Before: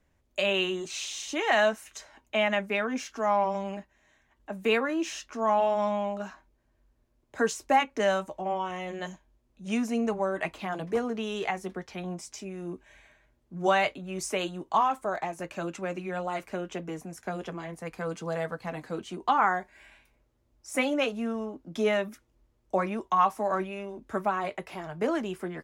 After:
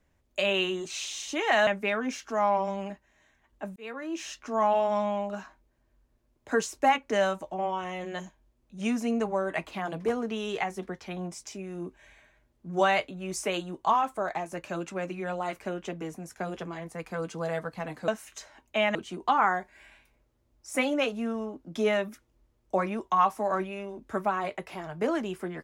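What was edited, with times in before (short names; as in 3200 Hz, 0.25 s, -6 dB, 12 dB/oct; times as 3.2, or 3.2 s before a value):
1.67–2.54 move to 18.95
4.63–5.26 fade in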